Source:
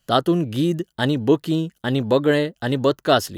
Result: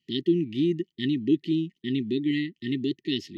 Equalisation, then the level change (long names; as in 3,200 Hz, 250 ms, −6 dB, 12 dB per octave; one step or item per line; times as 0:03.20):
high-pass filter 220 Hz 12 dB per octave
linear-phase brick-wall band-stop 400–1,800 Hz
high-frequency loss of the air 230 metres
−1.5 dB